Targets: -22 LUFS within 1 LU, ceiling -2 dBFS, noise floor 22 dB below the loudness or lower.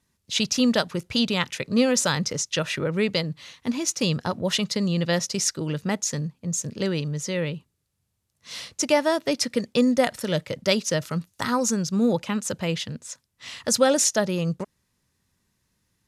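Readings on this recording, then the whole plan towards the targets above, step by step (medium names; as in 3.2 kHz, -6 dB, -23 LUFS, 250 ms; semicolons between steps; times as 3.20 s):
loudness -24.5 LUFS; peak level -7.0 dBFS; loudness target -22.0 LUFS
-> trim +2.5 dB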